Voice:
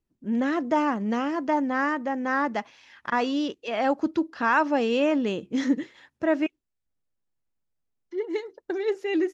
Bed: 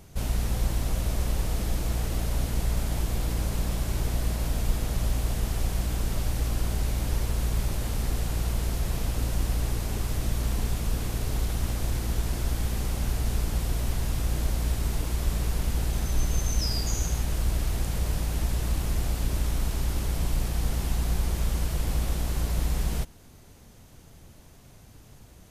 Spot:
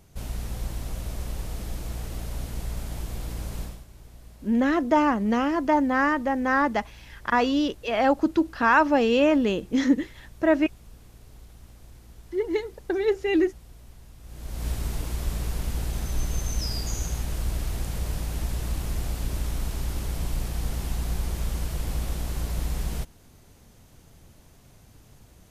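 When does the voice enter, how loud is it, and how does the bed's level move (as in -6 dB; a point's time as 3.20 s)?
4.20 s, +3.0 dB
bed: 3.63 s -5.5 dB
3.87 s -20.5 dB
14.19 s -20.5 dB
14.67 s -2 dB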